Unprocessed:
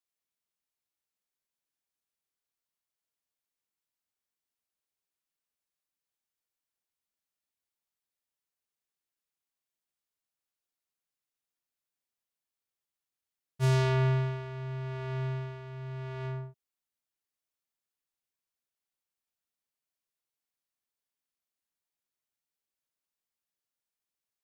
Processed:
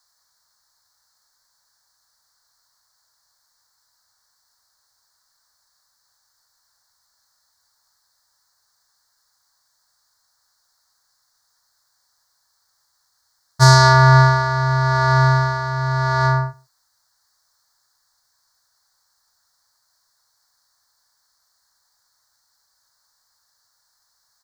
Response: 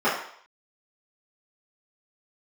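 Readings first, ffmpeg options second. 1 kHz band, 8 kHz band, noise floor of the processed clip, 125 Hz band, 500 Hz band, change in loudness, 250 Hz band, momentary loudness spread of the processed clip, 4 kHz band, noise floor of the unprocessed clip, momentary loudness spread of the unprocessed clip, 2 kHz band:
+25.5 dB, +23.5 dB, −68 dBFS, +15.0 dB, +13.0 dB, +17.0 dB, can't be measured, 11 LU, +21.5 dB, below −85 dBFS, 15 LU, +23.0 dB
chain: -filter_complex "[0:a]firequalizer=gain_entry='entry(110,0);entry(170,-11);entry(360,-15);entry(540,-4);entry(930,7);entry(1700,6);entry(2600,-25);entry(4300,11);entry(10000,-2)':delay=0.05:min_phase=1,asplit=2[link_01][link_02];[link_02]adelay=134.1,volume=-27dB,highshelf=frequency=4000:gain=-3.02[link_03];[link_01][link_03]amix=inputs=2:normalize=0,alimiter=level_in=22.5dB:limit=-1dB:release=50:level=0:latency=1,volume=-1dB"

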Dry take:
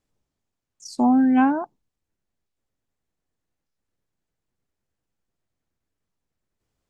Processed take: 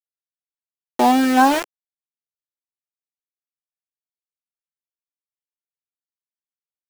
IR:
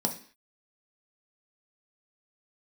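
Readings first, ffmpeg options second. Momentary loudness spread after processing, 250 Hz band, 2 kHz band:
10 LU, −0.5 dB, +9.0 dB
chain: -af "aeval=exprs='val(0)*gte(abs(val(0)),0.0668)':channel_layout=same,lowshelf=frequency=290:width_type=q:width=1.5:gain=-9,volume=7dB"

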